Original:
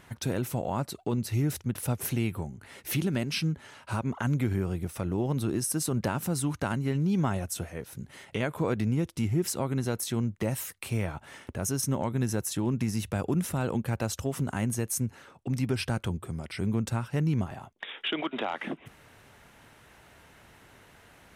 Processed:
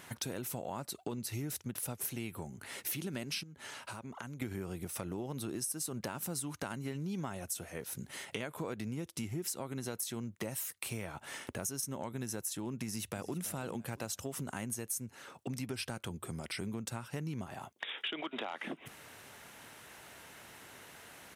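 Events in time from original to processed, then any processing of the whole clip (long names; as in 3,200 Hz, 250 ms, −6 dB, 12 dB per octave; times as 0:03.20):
0:03.43–0:04.42: downward compressor 4 to 1, threshold −43 dBFS
0:12.83–0:13.42: delay throw 330 ms, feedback 35%, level −15 dB
whole clip: high-pass filter 200 Hz 6 dB per octave; high-shelf EQ 4,200 Hz +7.5 dB; downward compressor 4 to 1, threshold −39 dBFS; level +1.5 dB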